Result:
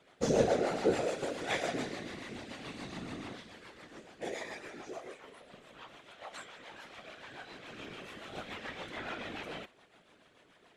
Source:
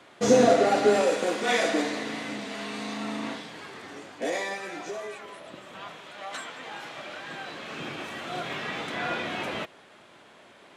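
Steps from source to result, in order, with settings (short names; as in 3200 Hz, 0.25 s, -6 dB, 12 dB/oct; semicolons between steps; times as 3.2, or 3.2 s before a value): rotary speaker horn 7 Hz; whisperiser; gain -7.5 dB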